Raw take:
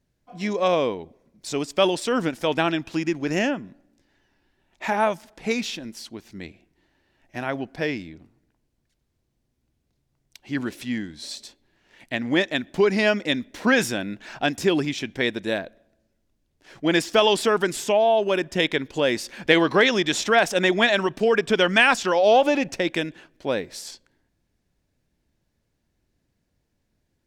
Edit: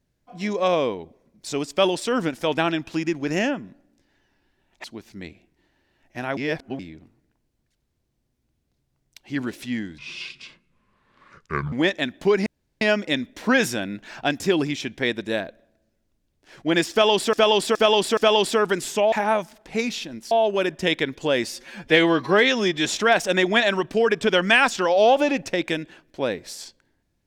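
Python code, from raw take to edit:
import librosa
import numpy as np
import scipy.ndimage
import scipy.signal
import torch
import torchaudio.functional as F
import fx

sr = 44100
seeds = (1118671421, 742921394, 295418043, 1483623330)

y = fx.edit(x, sr, fx.move(start_s=4.84, length_s=1.19, to_s=18.04),
    fx.reverse_span(start_s=7.56, length_s=0.42),
    fx.speed_span(start_s=11.17, length_s=1.08, speed=0.62),
    fx.insert_room_tone(at_s=12.99, length_s=0.35),
    fx.repeat(start_s=17.09, length_s=0.42, count=4),
    fx.stretch_span(start_s=19.19, length_s=0.93, factor=1.5), tone=tone)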